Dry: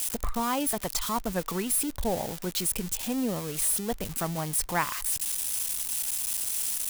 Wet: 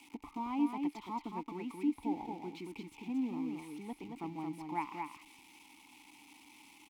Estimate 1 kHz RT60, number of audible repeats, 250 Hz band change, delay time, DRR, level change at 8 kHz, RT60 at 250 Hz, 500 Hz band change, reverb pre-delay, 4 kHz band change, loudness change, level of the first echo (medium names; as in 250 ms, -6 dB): no reverb, 1, -3.5 dB, 224 ms, no reverb, -34.5 dB, no reverb, -14.5 dB, no reverb, -20.5 dB, -11.0 dB, -4.5 dB